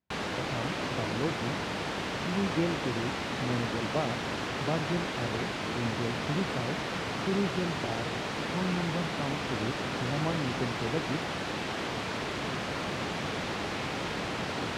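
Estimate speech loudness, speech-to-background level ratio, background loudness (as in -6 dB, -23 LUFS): -35.5 LUFS, -2.0 dB, -33.5 LUFS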